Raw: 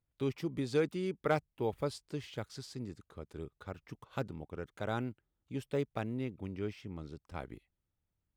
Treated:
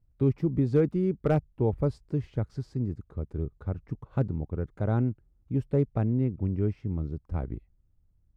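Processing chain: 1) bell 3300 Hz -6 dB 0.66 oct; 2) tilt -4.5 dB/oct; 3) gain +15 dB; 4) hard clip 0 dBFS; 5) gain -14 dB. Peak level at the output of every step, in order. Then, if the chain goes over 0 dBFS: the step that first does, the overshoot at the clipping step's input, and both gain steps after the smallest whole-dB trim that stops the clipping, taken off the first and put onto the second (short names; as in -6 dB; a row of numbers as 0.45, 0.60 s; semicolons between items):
-19.0, -12.0, +3.0, 0.0, -14.0 dBFS; step 3, 3.0 dB; step 3 +12 dB, step 5 -11 dB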